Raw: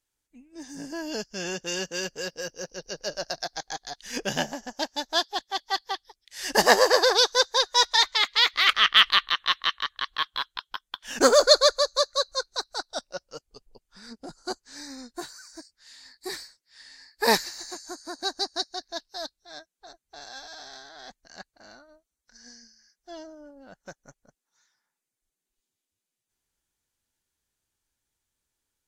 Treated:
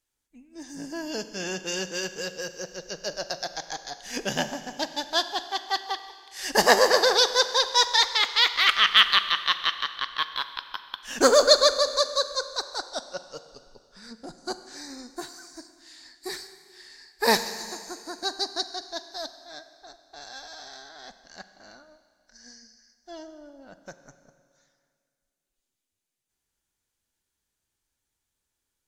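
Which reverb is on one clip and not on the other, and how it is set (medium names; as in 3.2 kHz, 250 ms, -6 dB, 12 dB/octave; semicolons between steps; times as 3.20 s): Schroeder reverb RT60 2.1 s, combs from 32 ms, DRR 11 dB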